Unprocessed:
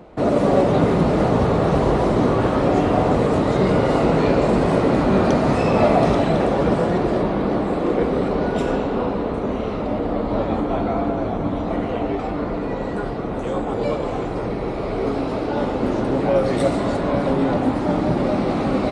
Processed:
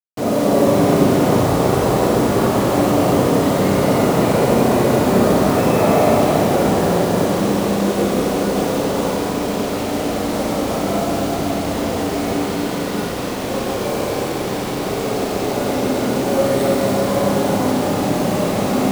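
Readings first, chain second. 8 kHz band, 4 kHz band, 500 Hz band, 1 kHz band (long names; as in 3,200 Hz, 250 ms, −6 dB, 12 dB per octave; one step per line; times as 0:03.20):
can't be measured, +8.5 dB, +2.5 dB, +2.5 dB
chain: high-pass filter 80 Hz 12 dB per octave
bit reduction 5 bits
four-comb reverb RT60 3.2 s, combs from 31 ms, DRR −3 dB
level −2.5 dB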